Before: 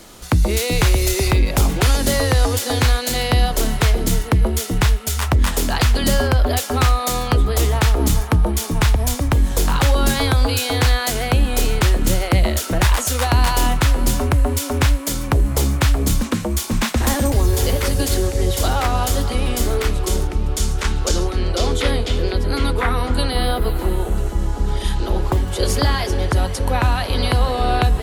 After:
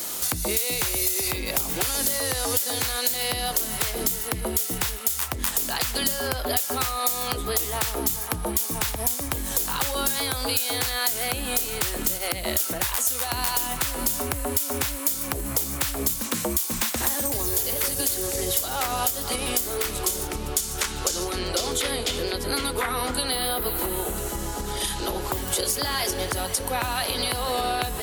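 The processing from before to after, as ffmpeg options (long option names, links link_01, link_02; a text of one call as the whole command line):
ffmpeg -i in.wav -filter_complex "[0:a]asettb=1/sr,asplit=3[link_01][link_02][link_03];[link_01]atrim=end=12.174[link_04];[link_02]atrim=start=12.17:end=12.6,asetpts=PTS-STARTPTS,afade=type=in:duration=0.004:curve=qsin,afade=type=out:start_time=0.426:duration=0.004:curve=qsin,acompressor=threshold=-18dB:ratio=6:attack=3.2:release=140:knee=1:detection=peak[link_05];[link_03]atrim=start=12.596[link_06];[link_04][link_05]acrossfade=duration=0.004:curve1=hsin:curve2=qsin[link_07];[link_07][link_06]acrossfade=duration=0.004:curve1=qsin:curve2=hsin,alimiter=limit=-16dB:level=0:latency=1:release=395,aemphasis=mode=production:type=bsi,acompressor=threshold=-26dB:ratio=6,volume=4.5dB" out.wav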